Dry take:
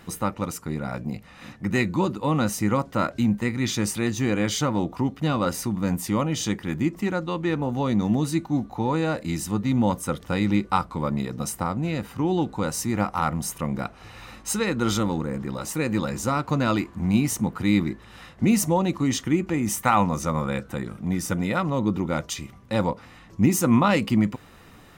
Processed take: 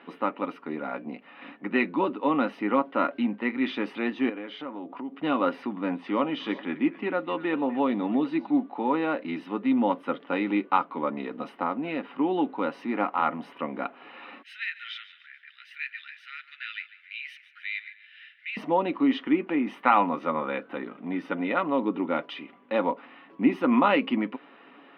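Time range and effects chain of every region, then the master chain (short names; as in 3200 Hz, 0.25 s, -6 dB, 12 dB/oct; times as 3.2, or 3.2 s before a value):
4.29–5.16 HPF 52 Hz + high shelf 4400 Hz -7 dB + compressor 5:1, threshold -32 dBFS
5.72–8.51 LPF 8900 Hz 24 dB/oct + delay with a stepping band-pass 0.125 s, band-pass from 4800 Hz, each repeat -1.4 oct, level -11 dB
14.42–18.57 steep high-pass 1600 Hz 72 dB/oct + feedback echo 0.145 s, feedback 41%, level -16 dB
whole clip: elliptic band-pass 250–3000 Hz, stop band 40 dB; comb 7.2 ms, depth 33%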